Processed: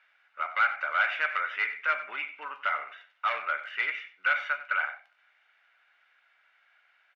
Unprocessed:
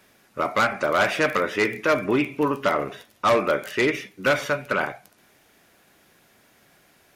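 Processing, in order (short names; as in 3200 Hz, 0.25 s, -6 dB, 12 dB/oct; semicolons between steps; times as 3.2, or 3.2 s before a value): Butterworth band-pass 2000 Hz, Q 1.1; high shelf 2300 Hz -8.5 dB; comb 1.4 ms, depth 38%; outdoor echo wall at 16 m, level -14 dB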